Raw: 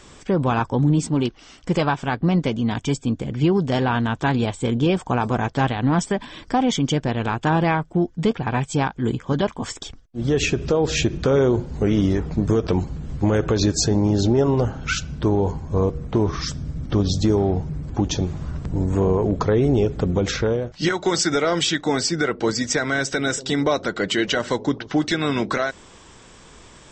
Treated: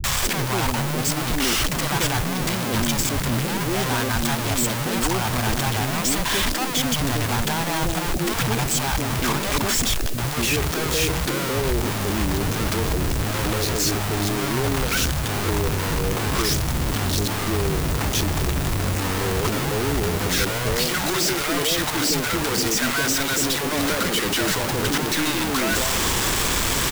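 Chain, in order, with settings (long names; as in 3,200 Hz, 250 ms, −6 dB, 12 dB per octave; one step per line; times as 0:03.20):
sign of each sample alone
background noise white −36 dBFS
three-band delay without the direct sound lows, highs, mids 40/230 ms, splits 180/580 Hz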